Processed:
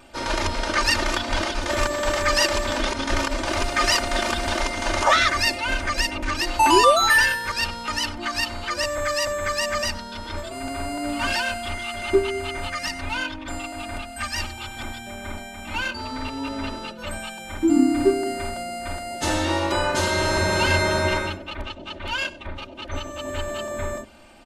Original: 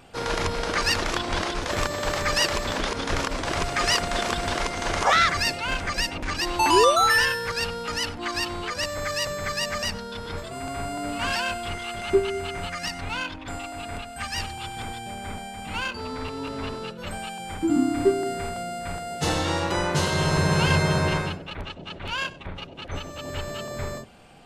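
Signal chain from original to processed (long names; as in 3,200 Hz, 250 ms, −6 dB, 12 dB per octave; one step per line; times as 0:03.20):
mains-hum notches 50/100/150/200/250/300/350 Hz
comb filter 3.3 ms, depth 90%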